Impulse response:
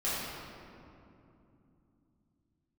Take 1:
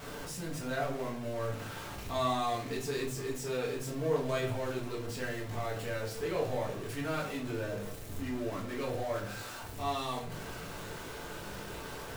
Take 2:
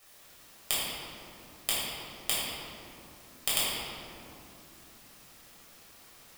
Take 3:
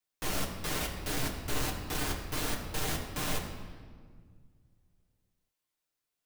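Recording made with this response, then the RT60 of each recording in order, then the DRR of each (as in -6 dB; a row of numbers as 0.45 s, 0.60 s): 2; 0.50 s, 2.8 s, 1.8 s; -4.0 dB, -10.5 dB, -1.5 dB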